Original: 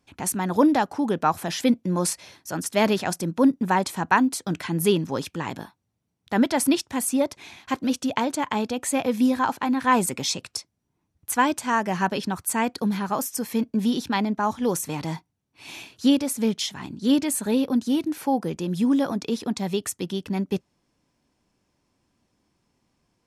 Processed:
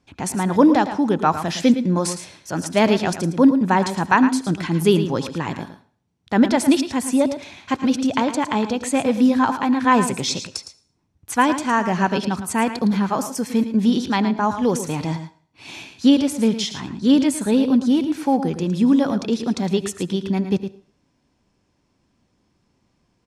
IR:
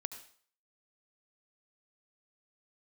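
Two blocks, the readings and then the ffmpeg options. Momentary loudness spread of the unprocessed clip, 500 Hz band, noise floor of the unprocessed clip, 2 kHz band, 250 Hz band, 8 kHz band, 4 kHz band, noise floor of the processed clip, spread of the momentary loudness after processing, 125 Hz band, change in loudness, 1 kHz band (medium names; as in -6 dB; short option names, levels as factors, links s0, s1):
9 LU, +4.5 dB, -76 dBFS, +3.5 dB, +5.5 dB, -0.5 dB, +3.0 dB, -67 dBFS, 10 LU, +6.0 dB, +4.5 dB, +3.5 dB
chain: -filter_complex "[0:a]lowpass=7900,aecho=1:1:111:0.299,asplit=2[s0][s1];[1:a]atrim=start_sample=2205,lowshelf=f=470:g=8.5[s2];[s1][s2]afir=irnorm=-1:irlink=0,volume=0.501[s3];[s0][s3]amix=inputs=2:normalize=0"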